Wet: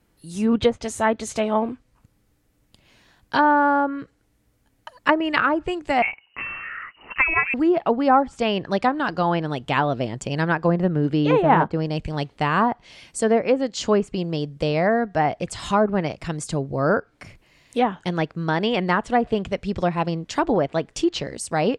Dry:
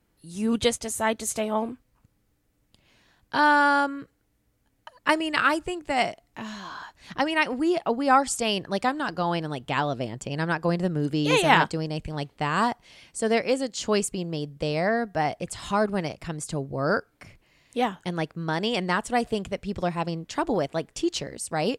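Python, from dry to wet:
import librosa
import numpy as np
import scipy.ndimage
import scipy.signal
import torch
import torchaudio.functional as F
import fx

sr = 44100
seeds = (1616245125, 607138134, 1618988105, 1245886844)

y = fx.env_lowpass_down(x, sr, base_hz=1000.0, full_db=-17.5)
y = fx.freq_invert(y, sr, carrier_hz=2900, at=(6.02, 7.54))
y = y * librosa.db_to_amplitude(5.0)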